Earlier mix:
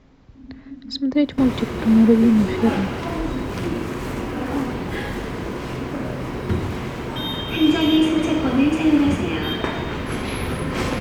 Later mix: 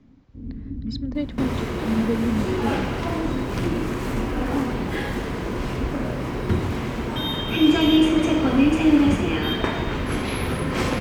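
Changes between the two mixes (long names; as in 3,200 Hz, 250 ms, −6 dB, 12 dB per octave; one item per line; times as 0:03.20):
speech −9.0 dB
first sound: remove formant filter i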